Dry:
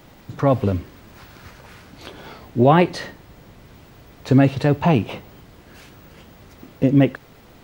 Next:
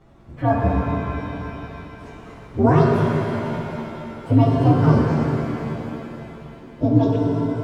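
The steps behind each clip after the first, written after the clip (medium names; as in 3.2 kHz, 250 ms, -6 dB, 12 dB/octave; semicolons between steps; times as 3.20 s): frequency axis rescaled in octaves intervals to 128%; low-pass 1 kHz 6 dB/octave; pitch-shifted reverb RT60 3.3 s, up +7 st, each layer -8 dB, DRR -1.5 dB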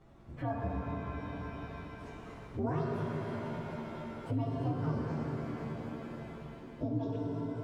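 compression 2:1, threshold -32 dBFS, peak gain reduction 12 dB; trim -7.5 dB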